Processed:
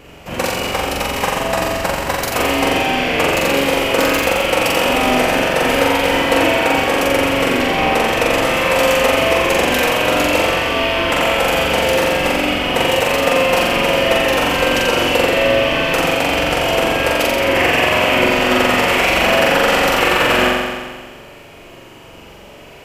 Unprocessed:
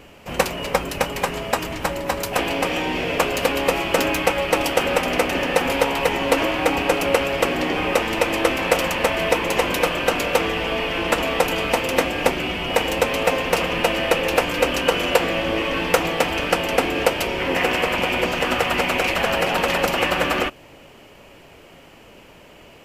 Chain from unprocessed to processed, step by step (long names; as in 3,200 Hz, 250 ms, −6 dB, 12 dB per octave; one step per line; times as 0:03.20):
brickwall limiter −8.5 dBFS, peak gain reduction 6.5 dB
flutter between parallel walls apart 7.5 metres, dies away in 1.5 s
level +2.5 dB